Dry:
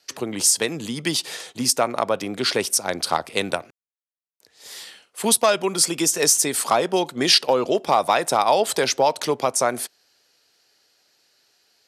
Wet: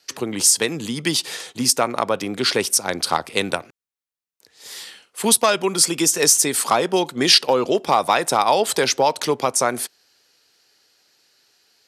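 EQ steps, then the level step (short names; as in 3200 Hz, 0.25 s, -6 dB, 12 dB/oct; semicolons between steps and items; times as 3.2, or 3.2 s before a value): bell 640 Hz -4 dB 0.45 oct; +2.5 dB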